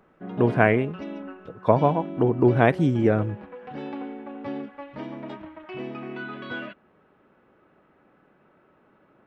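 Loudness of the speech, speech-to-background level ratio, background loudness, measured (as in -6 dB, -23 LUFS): -22.0 LUFS, 14.5 dB, -36.5 LUFS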